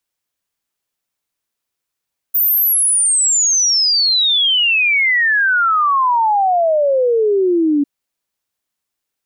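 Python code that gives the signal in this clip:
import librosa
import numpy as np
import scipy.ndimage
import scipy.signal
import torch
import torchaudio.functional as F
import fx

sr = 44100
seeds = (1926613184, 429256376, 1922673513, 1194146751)

y = fx.ess(sr, length_s=5.5, from_hz=15000.0, to_hz=280.0, level_db=-11.0)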